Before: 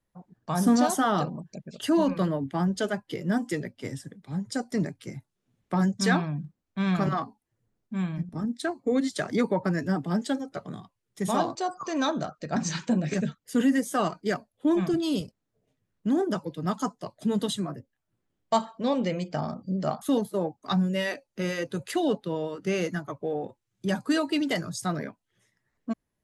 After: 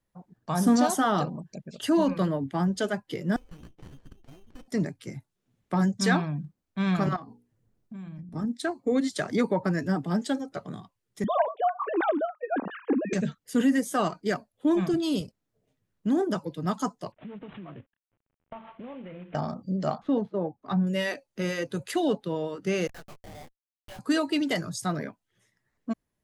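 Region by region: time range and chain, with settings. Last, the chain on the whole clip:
0:03.36–0:04.68: downward compressor 4 to 1, threshold −40 dBFS + voice inversion scrambler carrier 3,300 Hz + windowed peak hold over 33 samples
0:07.16–0:08.33: low-shelf EQ 470 Hz +7 dB + mains-hum notches 60/120/180/240/300/360/420/480 Hz + downward compressor, threshold −39 dBFS
0:11.24–0:13.13: three sine waves on the formant tracks + high-pass filter 290 Hz + spectral tilt −2 dB per octave
0:17.12–0:19.35: variable-slope delta modulation 16 kbit/s + downward compressor 10 to 1, threshold −38 dBFS
0:19.98–0:20.87: running median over 5 samples + head-to-tape spacing loss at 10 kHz 31 dB
0:22.87–0:23.99: Chebyshev high-pass with heavy ripple 530 Hz, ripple 3 dB + comparator with hysteresis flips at −37.5 dBFS + micro pitch shift up and down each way 40 cents
whole clip: no processing

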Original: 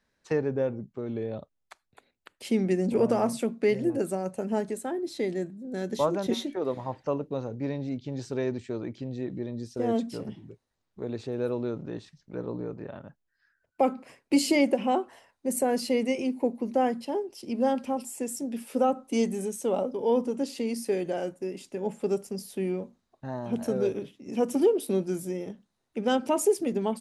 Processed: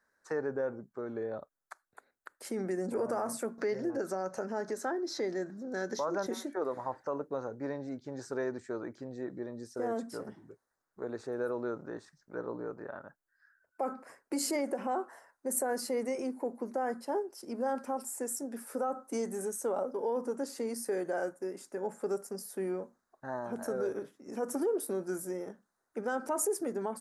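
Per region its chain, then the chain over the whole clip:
0:03.58–0:06.26: upward compression, threshold −27 dBFS + high shelf with overshoot 7,100 Hz −9 dB, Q 3 + one half of a high-frequency compander encoder only
whole clip: high shelf with overshoot 2,100 Hz −11 dB, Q 3; brickwall limiter −20.5 dBFS; bass and treble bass −12 dB, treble +14 dB; level −2 dB

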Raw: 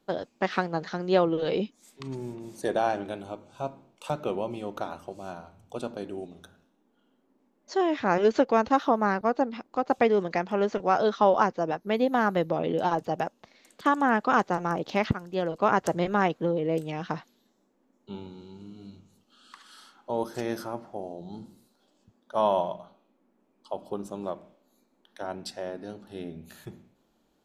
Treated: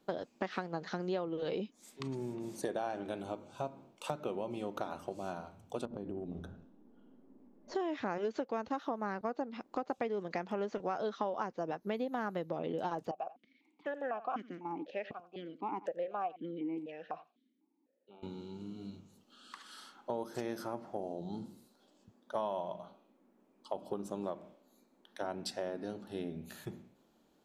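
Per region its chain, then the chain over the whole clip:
0:05.85–0:07.75: spectral tilt −4 dB per octave + downward compressor 12 to 1, threshold −35 dBFS
0:13.11–0:18.23: single-tap delay 88 ms −19 dB + formant filter that steps through the vowels 4 Hz
whole clip: low-shelf EQ 460 Hz +3.5 dB; downward compressor 6 to 1, threshold −32 dBFS; low-shelf EQ 95 Hz −10.5 dB; level −1 dB

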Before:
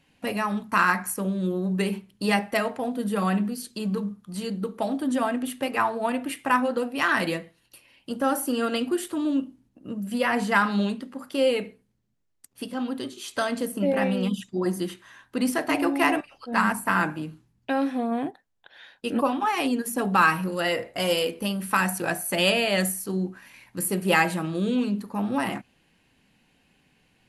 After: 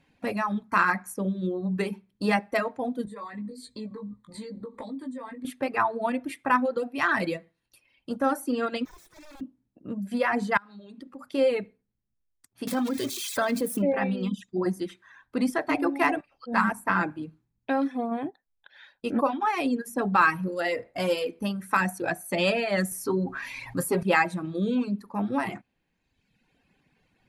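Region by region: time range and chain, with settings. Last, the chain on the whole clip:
0:03.05–0:05.45: EQ curve with evenly spaced ripples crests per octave 1, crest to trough 12 dB + downward compressor 8 to 1, threshold −34 dBFS + double-tracking delay 19 ms −5 dB
0:08.85–0:09.41: lower of the sound and its delayed copy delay 6.3 ms + tube saturation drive 31 dB, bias 0.55 + wrap-around overflow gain 40.5 dB
0:10.57–0:11.34: downward compressor 20 to 1, threshold −35 dBFS + one half of a high-frequency compander decoder only
0:12.67–0:13.82: spike at every zero crossing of −25 dBFS + envelope flattener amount 70%
0:22.91–0:24.03: comb filter 7.4 ms, depth 84% + dynamic equaliser 1,000 Hz, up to +7 dB, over −50 dBFS, Q 1.5 + envelope flattener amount 50%
whole clip: notch filter 2,900 Hz, Q 8.9; reverb reduction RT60 1.2 s; high-shelf EQ 6,000 Hz −12 dB

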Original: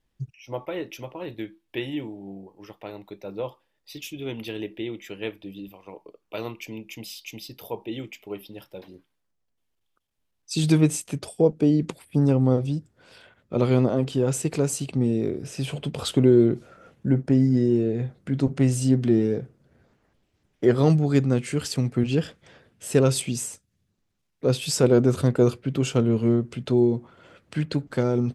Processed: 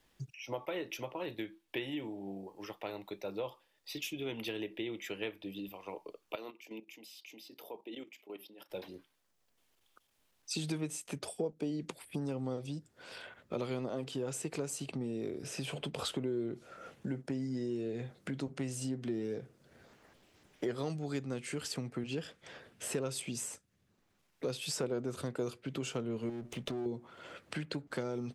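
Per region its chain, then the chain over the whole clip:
0:06.35–0:08.70: four-pole ladder high-pass 210 Hz, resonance 30% + output level in coarse steps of 14 dB
0:26.29–0:26.86: lower of the sound and its delayed copy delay 0.32 ms + downward compressor 4 to 1, threshold −24 dBFS
whole clip: downward compressor 2.5 to 1, threshold −31 dBFS; low-shelf EQ 230 Hz −11 dB; multiband upward and downward compressor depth 40%; level −2 dB

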